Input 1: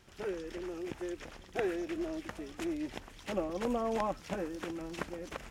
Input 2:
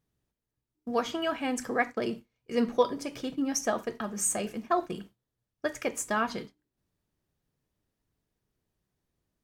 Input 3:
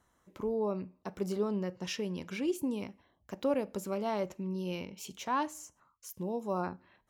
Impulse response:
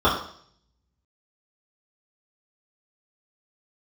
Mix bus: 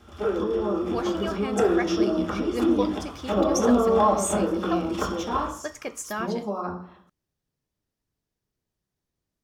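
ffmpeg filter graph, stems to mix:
-filter_complex "[0:a]volume=-0.5dB,asplit=2[a][b];[b]volume=-10dB[c];[1:a]equalizer=f=5.4k:w=1.5:g=4,volume=-3dB[d];[2:a]equalizer=f=5.7k:w=1.5:g=6,acompressor=threshold=-37dB:ratio=4,volume=0dB,asplit=3[e][f][g];[f]volume=-12dB[h];[g]apad=whole_len=242781[i];[a][i]sidechaincompress=threshold=-41dB:ratio=8:attack=16:release=170[j];[3:a]atrim=start_sample=2205[k];[c][h]amix=inputs=2:normalize=0[l];[l][k]afir=irnorm=-1:irlink=0[m];[j][d][e][m]amix=inputs=4:normalize=0"

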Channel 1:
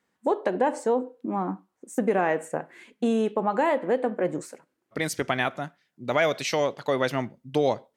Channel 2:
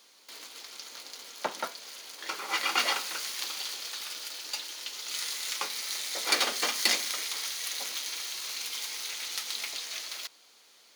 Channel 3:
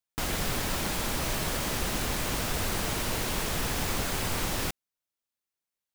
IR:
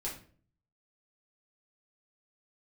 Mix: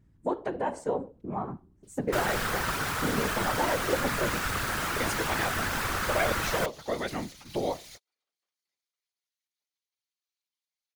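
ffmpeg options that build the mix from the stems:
-filter_complex "[0:a]aeval=exprs='val(0)+0.00178*(sin(2*PI*60*n/s)+sin(2*PI*2*60*n/s)/2+sin(2*PI*3*60*n/s)/3+sin(2*PI*4*60*n/s)/4+sin(2*PI*5*60*n/s)/5)':c=same,volume=-1dB,asplit=3[a][b][c];[b]volume=-18.5dB[d];[1:a]alimiter=limit=-22dB:level=0:latency=1:release=109,adelay=1800,volume=-7dB[e];[2:a]equalizer=f=1.4k:w=1.3:g=12,adelay=1950,volume=2.5dB[f];[c]apad=whole_len=562318[g];[e][g]sidechaingate=range=-44dB:threshold=-50dB:ratio=16:detection=peak[h];[3:a]atrim=start_sample=2205[i];[d][i]afir=irnorm=-1:irlink=0[j];[a][h][f][j]amix=inputs=4:normalize=0,afftfilt=real='hypot(re,im)*cos(2*PI*random(0))':imag='hypot(re,im)*sin(2*PI*random(1))':win_size=512:overlap=0.75"

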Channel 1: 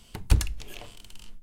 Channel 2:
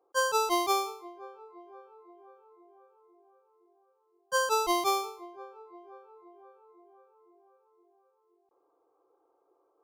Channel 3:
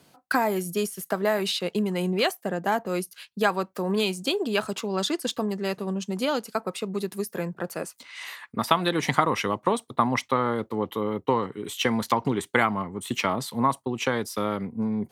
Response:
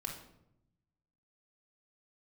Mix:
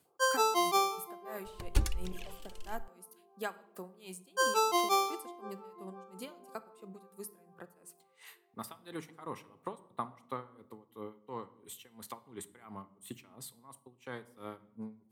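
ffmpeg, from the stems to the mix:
-filter_complex "[0:a]aphaser=in_gain=1:out_gain=1:delay=3.6:decay=0.62:speed=1.5:type=triangular,adelay=1450,volume=-8.5dB[a];[1:a]highpass=310,adelay=50,volume=-2.5dB,asplit=2[b][c];[c]volume=-13dB[d];[2:a]aexciter=amount=2.6:drive=5.9:freq=7.6k,aeval=exprs='val(0)*pow(10,-25*(0.5-0.5*cos(2*PI*2.9*n/s))/20)':c=same,volume=-16.5dB,asplit=2[e][f];[f]volume=-9dB[g];[3:a]atrim=start_sample=2205[h];[d][g]amix=inputs=2:normalize=0[i];[i][h]afir=irnorm=-1:irlink=0[j];[a][b][e][j]amix=inputs=4:normalize=0"

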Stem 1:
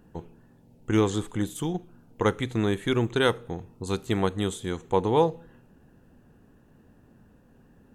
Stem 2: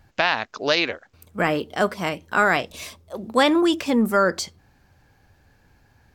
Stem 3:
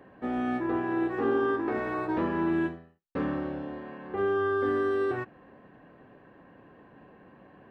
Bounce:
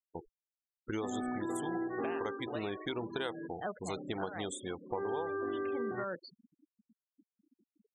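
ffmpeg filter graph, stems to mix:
-filter_complex "[0:a]bass=f=250:g=-10,treble=f=4k:g=5,volume=-0.5dB,asplit=2[a][b];[1:a]lowpass=4.1k,asoftclip=type=tanh:threshold=-6dB,adelay=1850,volume=-11dB[c];[2:a]highpass=100,adelay=800,volume=8dB,afade=t=out:st=2.01:d=0.57:silence=0.266073,afade=t=in:st=4.4:d=0.77:silence=0.266073[d];[b]apad=whole_len=352795[e];[c][e]sidechaincompress=threshold=-29dB:ratio=12:attack=22:release=403[f];[a][f]amix=inputs=2:normalize=0,adynamicequalizer=threshold=0.00794:dfrequency=740:dqfactor=2.6:tfrequency=740:tqfactor=2.6:attack=5:release=100:ratio=0.375:range=2.5:mode=boostabove:tftype=bell,acompressor=threshold=-43dB:ratio=1.5,volume=0dB[g];[d][g]amix=inputs=2:normalize=0,afftfilt=real='re*gte(hypot(re,im),0.0141)':imag='im*gte(hypot(re,im),0.0141)':win_size=1024:overlap=0.75,acompressor=threshold=-33dB:ratio=5"

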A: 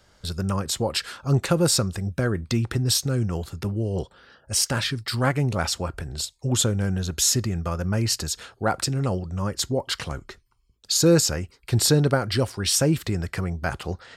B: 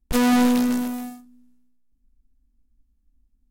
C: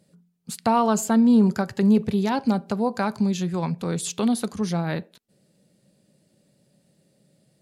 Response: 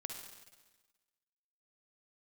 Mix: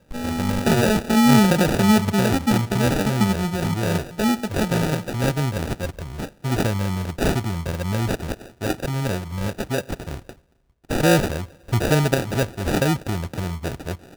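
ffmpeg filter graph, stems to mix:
-filter_complex "[0:a]volume=-0.5dB,asplit=2[a][b];[b]volume=-14.5dB[c];[1:a]lowpass=f=1.9k:t=q:w=4.9,lowshelf=f=280:g=10,volume=-18dB,asplit=2[d][e];[e]volume=-9dB[f];[2:a]lowpass=f=1.5k:p=1,volume=0dB,asplit=2[g][h];[h]volume=-8.5dB[i];[3:a]atrim=start_sample=2205[j];[c][f][i]amix=inputs=3:normalize=0[k];[k][j]afir=irnorm=-1:irlink=0[l];[a][d][g][l]amix=inputs=4:normalize=0,acrusher=samples=41:mix=1:aa=0.000001"

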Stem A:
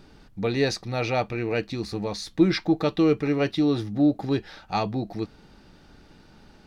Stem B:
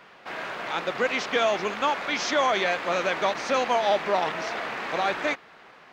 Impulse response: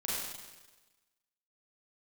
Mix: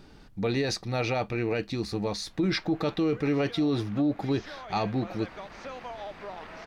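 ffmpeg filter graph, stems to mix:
-filter_complex "[0:a]volume=-0.5dB,asplit=2[a][b];[1:a]highshelf=f=5.8k:g=-9.5,acompressor=threshold=-25dB:ratio=3,adelay=2150,volume=-12dB[c];[b]apad=whole_len=356293[d];[c][d]sidechaincompress=threshold=-25dB:ratio=8:attack=49:release=1480[e];[a][e]amix=inputs=2:normalize=0,alimiter=limit=-19dB:level=0:latency=1:release=13"

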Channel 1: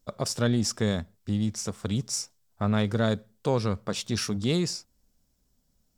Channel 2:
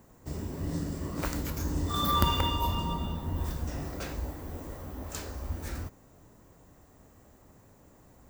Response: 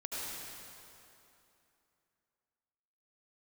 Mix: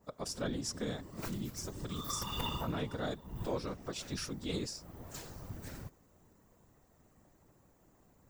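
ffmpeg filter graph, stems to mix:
-filter_complex "[0:a]equalizer=f=69:t=o:w=1.3:g=-14.5,acontrast=33,volume=-9dB,asplit=2[a][b];[1:a]adynamicequalizer=threshold=0.00447:dfrequency=2900:dqfactor=0.7:tfrequency=2900:tqfactor=0.7:attack=5:release=100:ratio=0.375:range=2:mode=boostabove:tftype=highshelf,volume=-2.5dB[c];[b]apad=whole_len=365831[d];[c][d]sidechaincompress=threshold=-40dB:ratio=4:attack=16:release=292[e];[a][e]amix=inputs=2:normalize=0,afftfilt=real='hypot(re,im)*cos(2*PI*random(0))':imag='hypot(re,im)*sin(2*PI*random(1))':win_size=512:overlap=0.75"

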